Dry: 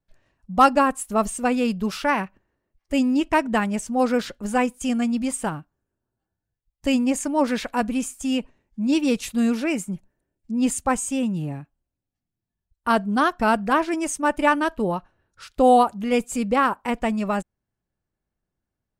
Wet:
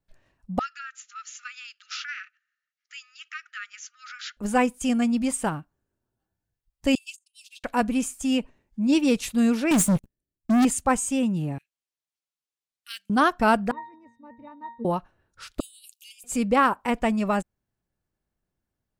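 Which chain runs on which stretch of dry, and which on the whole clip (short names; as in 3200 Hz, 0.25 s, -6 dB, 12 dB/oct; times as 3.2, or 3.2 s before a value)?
0.59–4.37 compressor 4:1, threshold -26 dBFS + brick-wall FIR band-pass 1200–7300 Hz
6.95–7.64 gate -24 dBFS, range -45 dB + rippled Chebyshev high-pass 2600 Hz, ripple 3 dB
9.71–10.65 bell 1100 Hz -14 dB 2.4 oct + sample leveller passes 5
11.58–13.1 inverse Chebyshev high-pass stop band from 990 Hz, stop band 50 dB + decimation joined by straight lines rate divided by 2×
13.71–14.85 air absorption 79 m + octave resonator A#, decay 0.35 s
15.6–16.24 steep high-pass 2500 Hz 72 dB/oct + differentiator + negative-ratio compressor -47 dBFS, ratio -0.5
whole clip: dry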